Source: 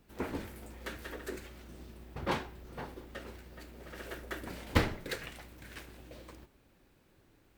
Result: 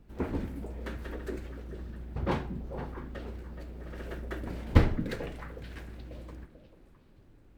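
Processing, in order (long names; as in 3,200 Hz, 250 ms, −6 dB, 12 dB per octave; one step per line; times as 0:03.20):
spectral tilt −2.5 dB per octave
echo through a band-pass that steps 220 ms, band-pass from 200 Hz, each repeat 1.4 octaves, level −5 dB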